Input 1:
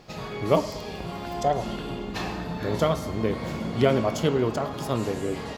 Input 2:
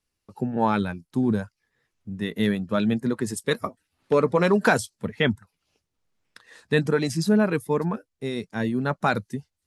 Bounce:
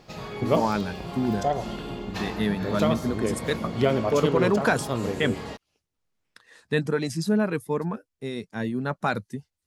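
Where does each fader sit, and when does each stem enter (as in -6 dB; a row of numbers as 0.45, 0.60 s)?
-1.5, -3.0 dB; 0.00, 0.00 s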